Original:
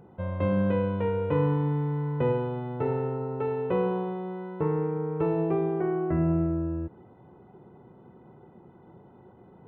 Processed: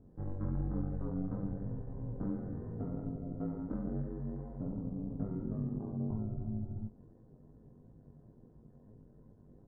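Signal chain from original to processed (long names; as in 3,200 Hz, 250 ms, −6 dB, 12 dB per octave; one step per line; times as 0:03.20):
downward compressor 2 to 1, threshold −32 dBFS, peak gain reduction 7 dB
ring modulation 95 Hz
pitch shifter −12 semitones
chorus effect 2.9 Hz, delay 18.5 ms, depth 3.1 ms
level +1 dB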